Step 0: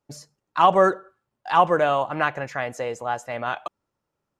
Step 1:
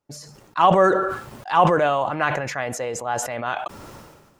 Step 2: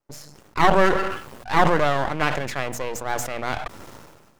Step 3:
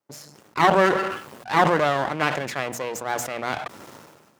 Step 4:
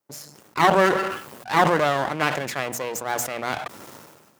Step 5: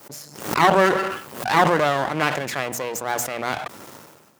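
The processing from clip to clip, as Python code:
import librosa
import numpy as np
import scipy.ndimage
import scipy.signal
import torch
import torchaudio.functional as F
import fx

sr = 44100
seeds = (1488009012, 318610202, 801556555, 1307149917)

y1 = fx.sustainer(x, sr, db_per_s=43.0)
y2 = np.maximum(y1, 0.0)
y2 = fx.hum_notches(y2, sr, base_hz=60, count=4)
y2 = y2 * 10.0 ** (2.5 / 20.0)
y3 = scipy.signal.sosfilt(scipy.signal.butter(2, 140.0, 'highpass', fs=sr, output='sos'), y2)
y4 = fx.high_shelf(y3, sr, hz=8200.0, db=8.0)
y5 = fx.pre_swell(y4, sr, db_per_s=97.0)
y5 = y5 * 10.0 ** (1.0 / 20.0)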